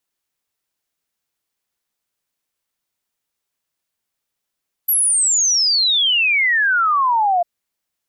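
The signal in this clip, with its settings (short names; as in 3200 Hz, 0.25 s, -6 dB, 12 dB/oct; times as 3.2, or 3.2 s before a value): log sweep 12000 Hz -> 680 Hz 2.55 s -13 dBFS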